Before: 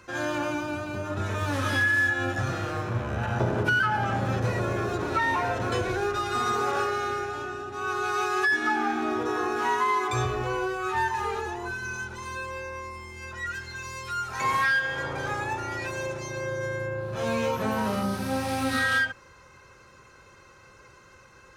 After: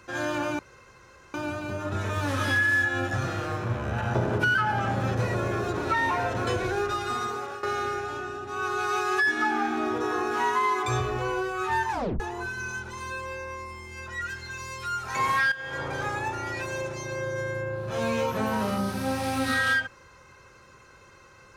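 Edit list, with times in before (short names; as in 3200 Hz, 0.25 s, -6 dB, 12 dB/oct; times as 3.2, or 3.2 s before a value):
0.59 insert room tone 0.75 s
6.15–6.88 fade out, to -14 dB
11.16 tape stop 0.29 s
14.77–15.08 fade in, from -14.5 dB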